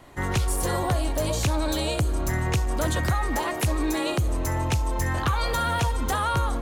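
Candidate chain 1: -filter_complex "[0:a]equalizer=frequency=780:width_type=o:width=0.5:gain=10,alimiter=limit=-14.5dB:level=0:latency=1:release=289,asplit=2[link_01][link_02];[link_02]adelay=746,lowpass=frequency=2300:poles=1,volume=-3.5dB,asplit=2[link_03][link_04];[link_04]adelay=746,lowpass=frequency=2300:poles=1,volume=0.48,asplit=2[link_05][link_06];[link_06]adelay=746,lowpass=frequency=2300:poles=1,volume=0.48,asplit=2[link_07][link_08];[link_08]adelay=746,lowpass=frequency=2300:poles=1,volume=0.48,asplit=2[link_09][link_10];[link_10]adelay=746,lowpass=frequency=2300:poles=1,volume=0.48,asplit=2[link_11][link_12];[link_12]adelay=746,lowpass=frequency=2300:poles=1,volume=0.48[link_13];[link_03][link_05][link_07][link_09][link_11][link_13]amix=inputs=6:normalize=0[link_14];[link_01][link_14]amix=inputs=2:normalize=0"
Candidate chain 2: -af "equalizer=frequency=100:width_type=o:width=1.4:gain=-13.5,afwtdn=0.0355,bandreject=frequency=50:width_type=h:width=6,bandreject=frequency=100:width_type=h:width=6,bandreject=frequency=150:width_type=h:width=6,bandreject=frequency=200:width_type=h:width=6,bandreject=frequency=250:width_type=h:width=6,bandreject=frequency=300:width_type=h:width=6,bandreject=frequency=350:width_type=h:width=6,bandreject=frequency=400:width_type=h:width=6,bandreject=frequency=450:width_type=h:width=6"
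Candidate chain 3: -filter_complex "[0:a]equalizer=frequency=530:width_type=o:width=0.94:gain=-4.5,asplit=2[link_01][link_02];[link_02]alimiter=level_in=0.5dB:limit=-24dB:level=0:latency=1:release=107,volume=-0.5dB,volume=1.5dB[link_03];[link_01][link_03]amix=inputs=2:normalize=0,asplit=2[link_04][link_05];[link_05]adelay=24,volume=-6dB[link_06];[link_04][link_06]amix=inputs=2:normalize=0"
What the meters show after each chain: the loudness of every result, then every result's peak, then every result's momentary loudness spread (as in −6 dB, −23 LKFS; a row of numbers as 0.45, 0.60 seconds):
−23.5, −30.0, −21.0 LKFS; −10.5, −15.5, −10.0 dBFS; 2, 6, 2 LU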